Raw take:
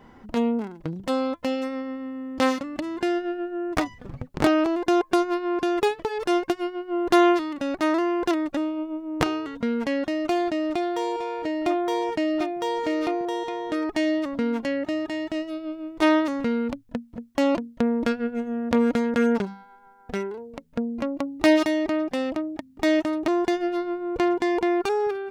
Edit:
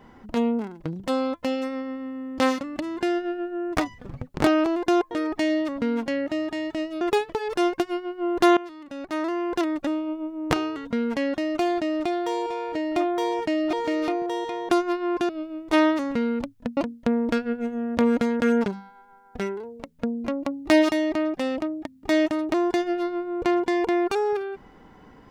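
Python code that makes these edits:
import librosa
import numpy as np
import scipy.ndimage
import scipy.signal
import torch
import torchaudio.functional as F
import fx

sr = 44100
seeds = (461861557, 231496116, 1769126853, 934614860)

y = fx.edit(x, sr, fx.swap(start_s=5.11, length_s=0.6, other_s=13.68, other_length_s=1.9),
    fx.fade_in_from(start_s=7.27, length_s=1.23, floor_db=-20.0),
    fx.cut(start_s=12.43, length_s=0.29),
    fx.cut(start_s=17.06, length_s=0.45), tone=tone)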